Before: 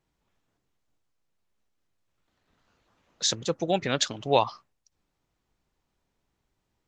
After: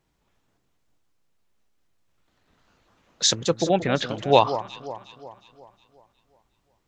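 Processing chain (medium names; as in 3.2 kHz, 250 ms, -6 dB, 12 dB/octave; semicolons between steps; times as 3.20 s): 3.64–4.09 s: distance through air 350 m; echo whose repeats swap between lows and highs 181 ms, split 1.3 kHz, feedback 66%, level -11.5 dB; trim +5.5 dB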